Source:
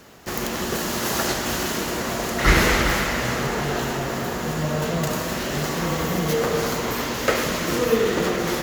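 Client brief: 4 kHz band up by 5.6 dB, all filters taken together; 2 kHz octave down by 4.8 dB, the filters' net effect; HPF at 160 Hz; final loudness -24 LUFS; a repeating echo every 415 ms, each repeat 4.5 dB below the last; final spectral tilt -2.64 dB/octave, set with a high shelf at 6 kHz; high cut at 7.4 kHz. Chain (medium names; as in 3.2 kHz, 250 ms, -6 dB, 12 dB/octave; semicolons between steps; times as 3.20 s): high-pass 160 Hz; low-pass 7.4 kHz; peaking EQ 2 kHz -8.5 dB; peaking EQ 4 kHz +7 dB; treble shelf 6 kHz +8 dB; feedback delay 415 ms, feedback 60%, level -4.5 dB; trim -3 dB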